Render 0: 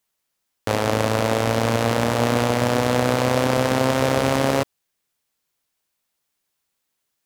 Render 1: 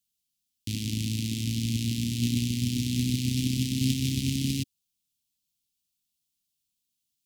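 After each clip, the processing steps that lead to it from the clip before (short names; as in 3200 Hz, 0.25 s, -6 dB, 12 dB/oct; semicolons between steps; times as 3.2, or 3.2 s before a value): gate -17 dBFS, range -7 dB; inverse Chebyshev band-stop 510–1500 Hz, stop band 50 dB; gain +3 dB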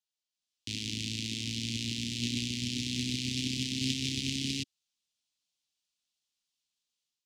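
three-band isolator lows -13 dB, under 380 Hz, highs -22 dB, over 7500 Hz; AGC gain up to 7.5 dB; gain -5.5 dB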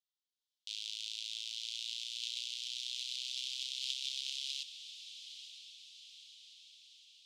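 ladder high-pass 2900 Hz, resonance 50%; diffused feedback echo 0.917 s, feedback 56%, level -11 dB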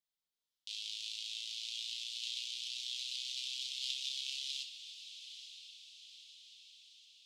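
reverb RT60 0.50 s, pre-delay 4 ms, DRR 2.5 dB; gain -2 dB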